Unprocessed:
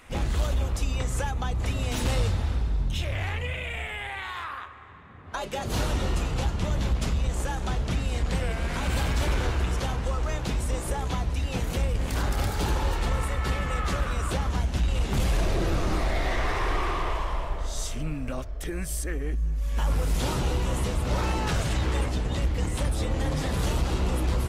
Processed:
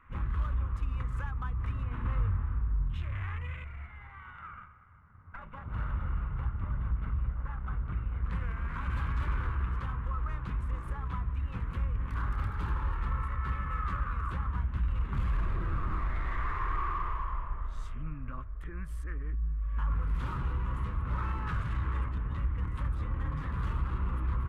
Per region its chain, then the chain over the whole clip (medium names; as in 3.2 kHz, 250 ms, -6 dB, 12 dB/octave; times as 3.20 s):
1.83–2.86 s: boxcar filter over 8 samples + doubling 21 ms -11 dB
3.64–8.25 s: comb filter that takes the minimum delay 1.4 ms + distance through air 200 m + tape noise reduction on one side only decoder only
whole clip: local Wiener filter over 9 samples; FFT filter 110 Hz 0 dB, 740 Hz -17 dB, 1.1 kHz +5 dB, 5.4 kHz -20 dB; trim -5 dB